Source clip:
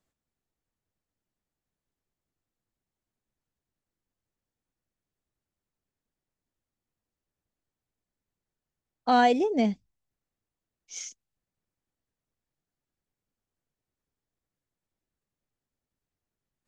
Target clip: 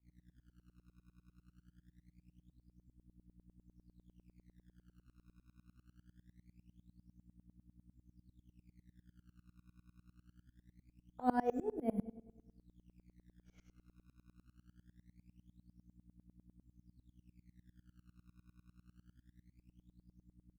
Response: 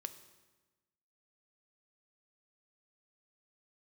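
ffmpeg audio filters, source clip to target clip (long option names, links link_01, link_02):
-filter_complex "[0:a]lowpass=1200,lowshelf=frequency=85:gain=10.5,aeval=exprs='val(0)+0.00355*(sin(2*PI*60*n/s)+sin(2*PI*2*60*n/s)/2+sin(2*PI*3*60*n/s)/3+sin(2*PI*4*60*n/s)/4+sin(2*PI*5*60*n/s)/5)':channel_layout=same,atempo=0.81,acrossover=split=220[link_01][link_02];[link_01]acrusher=samples=19:mix=1:aa=0.000001:lfo=1:lforange=30.4:lforate=0.23[link_03];[link_03][link_02]amix=inputs=2:normalize=0,asplit=2[link_04][link_05];[link_05]adelay=40,volume=-13dB[link_06];[link_04][link_06]amix=inputs=2:normalize=0[link_07];[1:a]atrim=start_sample=2205,asetrate=57330,aresample=44100[link_08];[link_07][link_08]afir=irnorm=-1:irlink=0,aeval=exprs='val(0)*pow(10,-26*if(lt(mod(-10*n/s,1),2*abs(-10)/1000),1-mod(-10*n/s,1)/(2*abs(-10)/1000),(mod(-10*n/s,1)-2*abs(-10)/1000)/(1-2*abs(-10)/1000))/20)':channel_layout=same,volume=-1dB"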